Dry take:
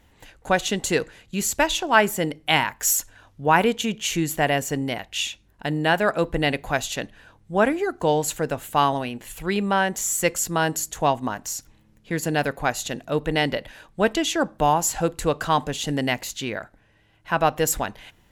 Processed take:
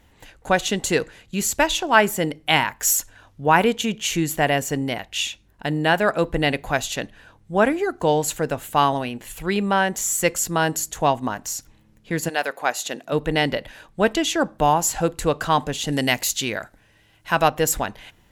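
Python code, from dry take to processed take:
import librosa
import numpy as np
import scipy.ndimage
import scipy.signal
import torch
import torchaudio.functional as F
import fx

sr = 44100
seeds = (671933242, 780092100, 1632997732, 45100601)

y = fx.highpass(x, sr, hz=fx.line((12.28, 660.0), (13.11, 230.0)), slope=12, at=(12.28, 13.11), fade=0.02)
y = fx.high_shelf(y, sr, hz=3500.0, db=10.5, at=(15.92, 17.48))
y = y * librosa.db_to_amplitude(1.5)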